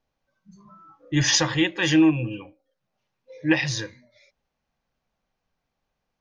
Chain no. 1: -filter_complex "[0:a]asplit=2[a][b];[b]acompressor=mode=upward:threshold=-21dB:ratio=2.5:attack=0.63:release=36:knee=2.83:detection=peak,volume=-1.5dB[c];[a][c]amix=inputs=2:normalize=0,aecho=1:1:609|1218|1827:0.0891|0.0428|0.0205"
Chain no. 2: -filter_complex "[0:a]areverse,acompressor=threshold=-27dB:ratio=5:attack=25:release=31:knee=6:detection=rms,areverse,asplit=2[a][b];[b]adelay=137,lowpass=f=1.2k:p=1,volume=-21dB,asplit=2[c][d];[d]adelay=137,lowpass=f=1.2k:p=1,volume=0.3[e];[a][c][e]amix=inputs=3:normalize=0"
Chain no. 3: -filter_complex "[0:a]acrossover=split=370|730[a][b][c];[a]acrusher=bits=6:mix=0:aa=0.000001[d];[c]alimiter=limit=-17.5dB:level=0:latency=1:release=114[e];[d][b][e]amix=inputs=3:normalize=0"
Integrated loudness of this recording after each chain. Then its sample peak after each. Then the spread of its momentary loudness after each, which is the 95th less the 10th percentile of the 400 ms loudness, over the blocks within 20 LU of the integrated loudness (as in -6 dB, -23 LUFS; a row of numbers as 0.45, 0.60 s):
-16.5, -28.5, -23.5 LUFS; -2.0, -14.0, -8.0 dBFS; 22, 13, 14 LU